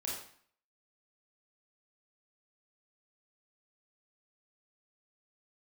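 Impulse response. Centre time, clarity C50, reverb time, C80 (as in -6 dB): 50 ms, 1.5 dB, 0.55 s, 5.5 dB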